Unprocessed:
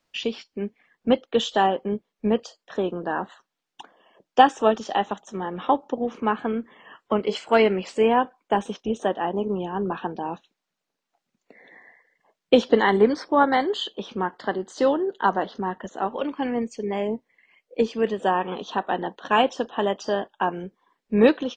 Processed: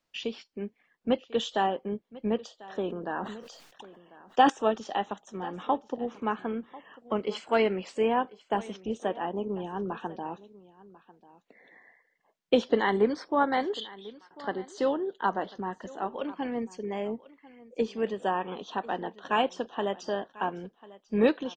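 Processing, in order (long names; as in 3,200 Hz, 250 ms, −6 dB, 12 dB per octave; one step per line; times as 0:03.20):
0:13.80–0:14.31: resonant band-pass 3,600 Hz, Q 5.5
single-tap delay 1,044 ms −20 dB
0:02.86–0:04.50: level that may fall only so fast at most 51 dB per second
level −6.5 dB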